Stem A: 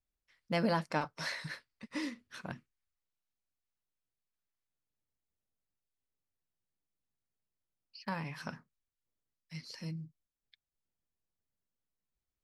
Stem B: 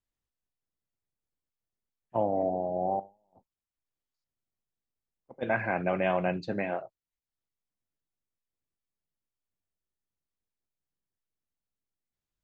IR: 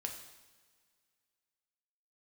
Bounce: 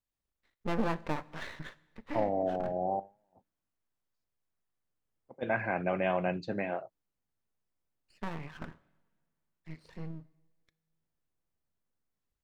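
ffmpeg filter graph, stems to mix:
-filter_complex "[0:a]lowpass=1.7k,aeval=exprs='max(val(0),0)':c=same,adelay=150,volume=3dB,asplit=2[a][b];[b]volume=-11dB[c];[1:a]volume=-2.5dB[d];[2:a]atrim=start_sample=2205[e];[c][e]afir=irnorm=-1:irlink=0[f];[a][d][f]amix=inputs=3:normalize=0"

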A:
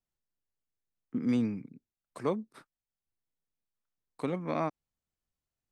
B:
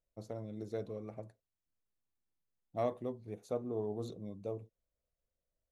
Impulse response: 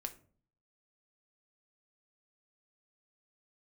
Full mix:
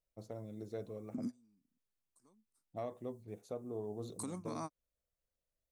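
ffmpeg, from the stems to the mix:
-filter_complex "[0:a]equalizer=f=250:t=o:w=1:g=8,equalizer=f=500:t=o:w=1:g=-6,equalizer=f=1k:t=o:w=1:g=6,equalizer=f=2k:t=o:w=1:g=-5,equalizer=f=8k:t=o:w=1:g=7,acompressor=threshold=-24dB:ratio=6,aexciter=amount=7.9:drive=6.1:freq=4.5k,volume=-7dB[a];[1:a]volume=-3dB,asplit=2[b][c];[c]apad=whole_len=252098[d];[a][d]sidechaingate=range=-33dB:threshold=-51dB:ratio=16:detection=peak[e];[e][b]amix=inputs=2:normalize=0,alimiter=level_in=7dB:limit=-24dB:level=0:latency=1:release=247,volume=-7dB"

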